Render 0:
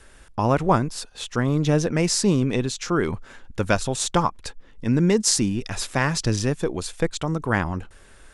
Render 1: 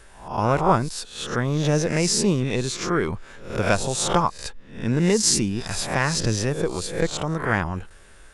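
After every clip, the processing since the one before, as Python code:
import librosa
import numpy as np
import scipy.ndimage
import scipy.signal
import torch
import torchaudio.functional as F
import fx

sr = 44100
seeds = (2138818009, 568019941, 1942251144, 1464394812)

y = fx.spec_swells(x, sr, rise_s=0.48)
y = fx.peak_eq(y, sr, hz=270.0, db=-5.0, octaves=0.29)
y = y * 10.0 ** (-1.0 / 20.0)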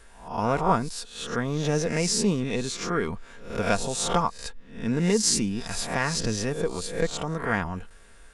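y = x + 0.37 * np.pad(x, (int(4.3 * sr / 1000.0), 0))[:len(x)]
y = y * 10.0 ** (-4.0 / 20.0)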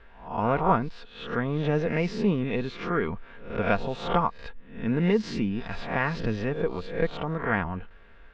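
y = scipy.signal.sosfilt(scipy.signal.butter(4, 3100.0, 'lowpass', fs=sr, output='sos'), x)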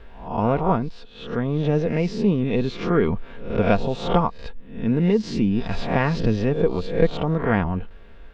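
y = fx.peak_eq(x, sr, hz=1600.0, db=-9.0, octaves=1.8)
y = fx.rider(y, sr, range_db=4, speed_s=0.5)
y = y * 10.0 ** (7.5 / 20.0)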